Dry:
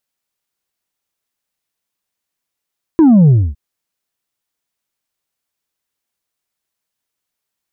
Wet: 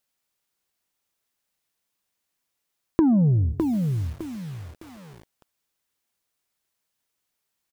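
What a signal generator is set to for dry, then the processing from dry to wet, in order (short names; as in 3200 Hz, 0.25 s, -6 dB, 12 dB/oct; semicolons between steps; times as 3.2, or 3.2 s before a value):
sub drop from 340 Hz, over 0.56 s, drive 3 dB, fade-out 0.26 s, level -5 dB
feedback echo 0.134 s, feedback 27%, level -22.5 dB; compressor 12:1, threshold -17 dBFS; lo-fi delay 0.608 s, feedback 35%, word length 7-bit, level -5 dB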